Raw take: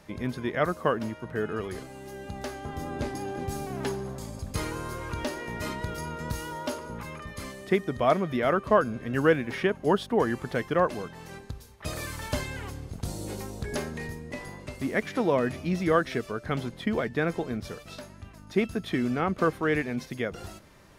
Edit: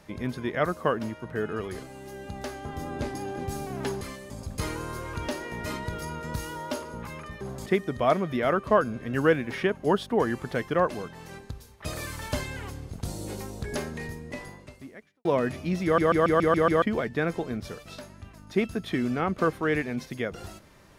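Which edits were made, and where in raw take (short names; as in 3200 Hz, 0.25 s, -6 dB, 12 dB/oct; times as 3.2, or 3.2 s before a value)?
4.01–4.26 swap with 7.37–7.66
14.39–15.25 fade out quadratic
15.84 stutter in place 0.14 s, 7 plays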